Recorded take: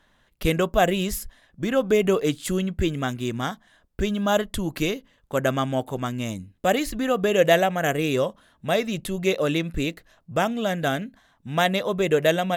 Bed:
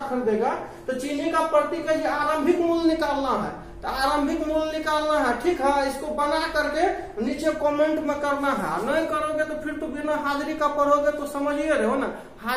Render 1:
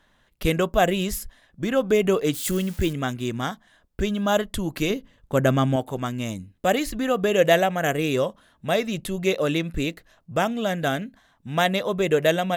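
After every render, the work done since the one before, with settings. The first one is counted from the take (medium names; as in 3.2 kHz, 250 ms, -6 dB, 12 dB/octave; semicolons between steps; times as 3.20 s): 2.33–2.93 s: zero-crossing glitches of -26 dBFS; 4.90–5.76 s: bass shelf 320 Hz +8.5 dB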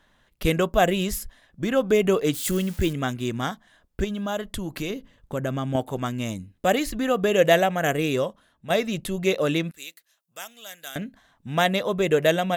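4.04–5.75 s: compression 2:1, threshold -29 dBFS; 8.02–8.70 s: fade out, to -8.5 dB; 9.71–10.96 s: differentiator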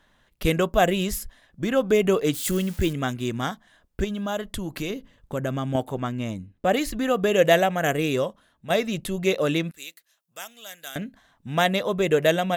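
5.91–6.72 s: treble shelf 4.9 kHz -> 3.3 kHz -11.5 dB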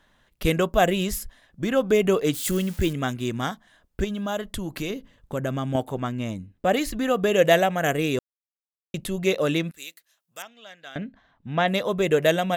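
8.19–8.94 s: mute; 10.42–11.68 s: distance through air 210 m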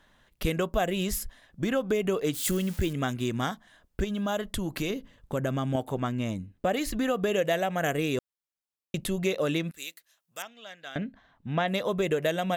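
compression 4:1, threshold -24 dBFS, peak gain reduction 10 dB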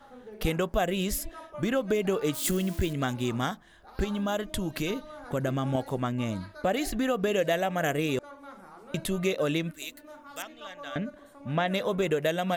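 add bed -23 dB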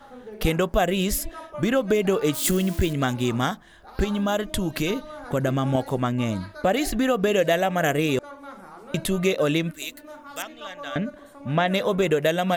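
trim +5.5 dB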